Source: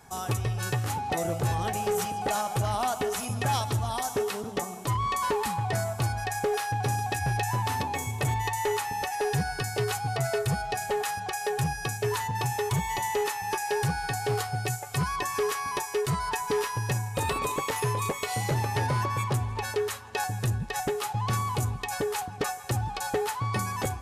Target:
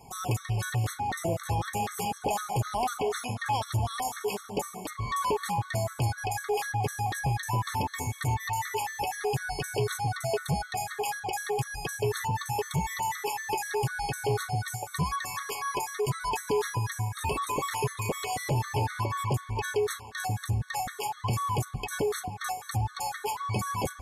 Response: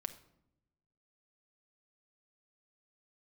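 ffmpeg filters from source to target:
-filter_complex "[0:a]asettb=1/sr,asplit=3[a][b][c];[a]atrim=end=2.974[d];[b]atrim=start=2.97:end=3.62,asetpts=PTS-STARTPTS,afade=t=in:d=0.004:c=qsin,afade=t=out:st=0.646:d=0.004:c=qsin,asplit=2[e][f];[f]highpass=f=720:p=1,volume=6dB,asoftclip=type=tanh:threshold=-19.5dB[g];[e][g]amix=inputs=2:normalize=0,lowpass=f=3.2k:p=1,volume=-6dB[h];[c]atrim=start=3.616[i];[d][h]acrossfade=d=0.004:c1=hsin:c2=qsin[j];[j][i]acrossfade=d=0.004:c1=qsin:c2=hsin,alimiter=limit=-23.5dB:level=0:latency=1:release=18,afftfilt=real='re*gt(sin(2*PI*4*pts/sr)*(1-2*mod(floor(b*sr/1024/1100),2)),0)':imag='im*gt(sin(2*PI*4*pts/sr)*(1-2*mod(floor(b*sr/1024/1100),2)),0)':win_size=1024:overlap=0.75,volume=3dB"

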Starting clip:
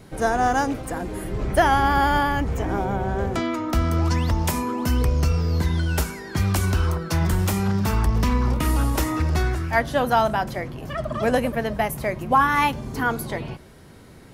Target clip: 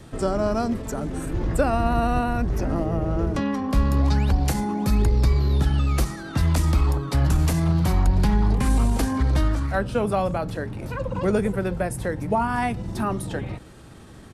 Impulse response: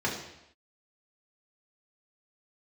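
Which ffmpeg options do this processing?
-filter_complex "[0:a]asetrate=37084,aresample=44100,atempo=1.18921,acrossover=split=380[a][b];[b]acompressor=threshold=-39dB:ratio=1.5[c];[a][c]amix=inputs=2:normalize=0,volume=2dB"

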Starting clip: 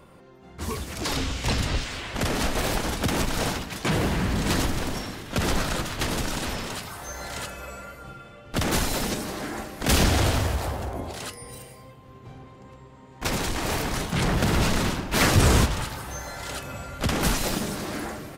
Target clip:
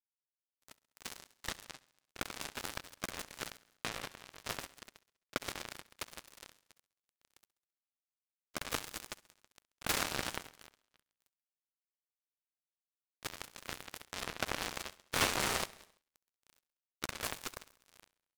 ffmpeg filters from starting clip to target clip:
-filter_complex "[0:a]bass=f=250:g=-12,treble=f=4k:g=-3,acompressor=threshold=-37dB:ratio=1.5,acrusher=bits=3:mix=0:aa=0.5,aeval=exprs='val(0)*sin(2*PI*860*n/s)':c=same,asplit=2[a][b];[b]aecho=0:1:67|134|201|268|335:0.0891|0.0535|0.0321|0.0193|0.0116[c];[a][c]amix=inputs=2:normalize=0,volume=2dB"

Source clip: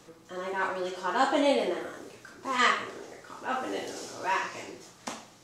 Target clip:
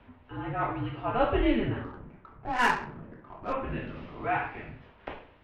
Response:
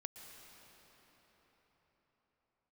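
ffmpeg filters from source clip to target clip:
-filter_complex "[0:a]highpass=f=150:t=q:w=0.5412,highpass=f=150:t=q:w=1.307,lowpass=f=3.1k:t=q:w=0.5176,lowpass=f=3.1k:t=q:w=0.7071,lowpass=f=3.1k:t=q:w=1.932,afreqshift=-240,asettb=1/sr,asplit=3[a][b][c];[a]atrim=end=1.844[d];[b]atrim=start=1.84:end=3.53,asetpts=PTS-STARTPTS,afade=t=in:d=0.004:c=qsin,afade=t=out:st=1.686:d=0.004:c=qsin,adynamicsmooth=sensitivity=4:basefreq=1.5k[e];[c]atrim=start=3.526[f];[d][e]acrossfade=d=0.004:c1=hsin:c2=qsin[g];[g][f]acrossfade=d=0.004:c1=qsin:c2=hsin"

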